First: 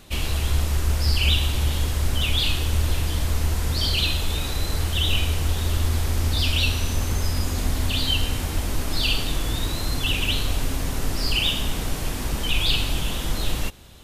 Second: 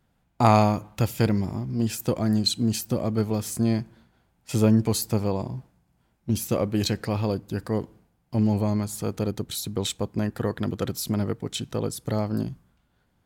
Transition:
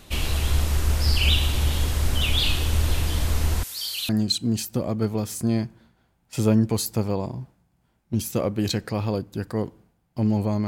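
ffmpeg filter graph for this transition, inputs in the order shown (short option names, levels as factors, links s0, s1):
-filter_complex "[0:a]asettb=1/sr,asplit=3[s0][s1][s2];[s0]atrim=end=3.634[s3];[s1]atrim=start=3.63:end=4.09,asetpts=PTS-STARTPTS,afade=t=in:d=0.004:c=qsin,afade=t=out:st=0.456:d=0.004:c=qsin,aderivative[s4];[s2]atrim=start=4.086[s5];[s3][s4]acrossfade=d=0.004:c1=hsin:c2=qsin[s6];[s6][s5]acrossfade=d=0.004:c1=qsin:c2=hsin,apad=whole_dur=10.67,atrim=end=10.67,atrim=end=4.092[s7];[1:a]atrim=start=2.248:end=8.83[s8];[s7][s8]acrossfade=d=0.004:c1=hsin:c2=hsin"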